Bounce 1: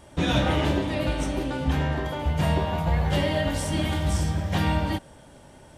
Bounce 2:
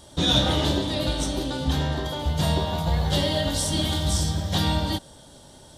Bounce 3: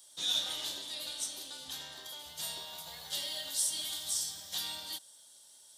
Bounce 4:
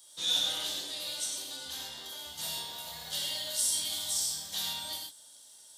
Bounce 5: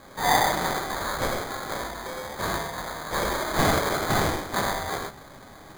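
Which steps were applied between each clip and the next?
resonant high shelf 3 kHz +6.5 dB, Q 3
differentiator; trim -3 dB
gated-style reverb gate 150 ms flat, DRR -0.5 dB
sample-and-hold 16×; trim +8.5 dB

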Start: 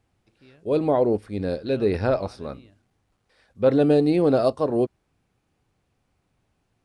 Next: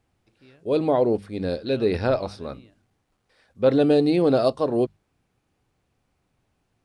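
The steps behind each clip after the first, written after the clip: hum notches 50/100/150/200 Hz; dynamic bell 3.7 kHz, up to +5 dB, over -50 dBFS, Q 1.4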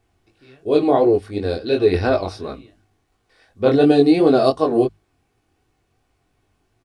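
comb 2.7 ms, depth 41%; chorus 2.8 Hz, delay 19 ms, depth 3.8 ms; trim +7.5 dB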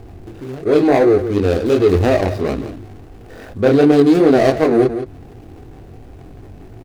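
median filter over 41 samples; delay 170 ms -20.5 dB; level flattener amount 50%; trim +1.5 dB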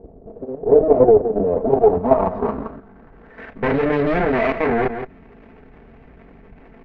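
comb filter that takes the minimum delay 4.5 ms; low-pass sweep 560 Hz -> 2.1 kHz, 1.41–3.53 s; level held to a coarse grid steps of 9 dB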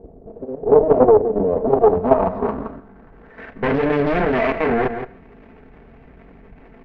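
on a send at -16 dB: reverberation, pre-delay 8 ms; on the sum: loudspeaker Doppler distortion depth 0.3 ms

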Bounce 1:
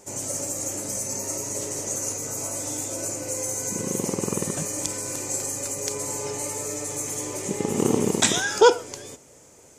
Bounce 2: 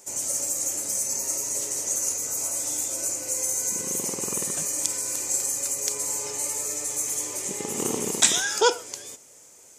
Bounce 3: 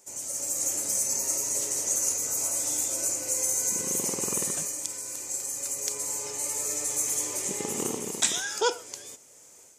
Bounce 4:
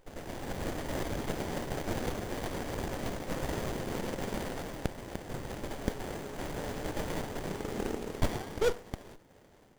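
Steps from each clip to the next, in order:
tilt EQ +2.5 dB/octave; trim -4 dB
level rider gain up to 7.5 dB; trim -7.5 dB
sliding maximum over 33 samples; trim -2 dB

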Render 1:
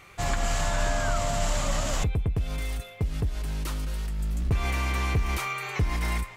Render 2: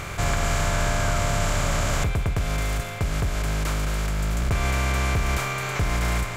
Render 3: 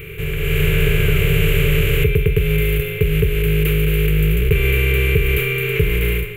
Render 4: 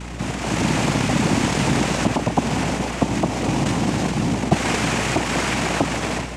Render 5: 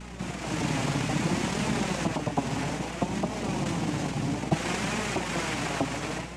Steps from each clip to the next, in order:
spectral levelling over time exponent 0.4; trim -1.5 dB
FFT filter 120 Hz 0 dB, 160 Hz +7 dB, 230 Hz -20 dB, 430 Hz +14 dB, 660 Hz -24 dB, 1.1 kHz -18 dB, 2.7 kHz +8 dB, 5.3 kHz -25 dB, 8.1 kHz -13 dB, 13 kHz +11 dB; level rider gain up to 11.5 dB; trim -1.5 dB
noise-vocoded speech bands 4; hum 60 Hz, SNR 13 dB; trim -1.5 dB
flange 0.6 Hz, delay 4.6 ms, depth 2.9 ms, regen +49%; trim -4.5 dB

